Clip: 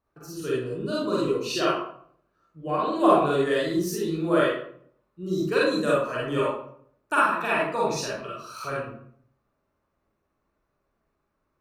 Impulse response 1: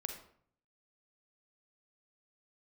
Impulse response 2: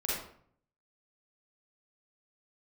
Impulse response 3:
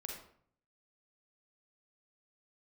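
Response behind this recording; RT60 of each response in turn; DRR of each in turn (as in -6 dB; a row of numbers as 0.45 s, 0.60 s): 2; 0.60 s, 0.60 s, 0.60 s; 4.5 dB, -6.5 dB, 0.0 dB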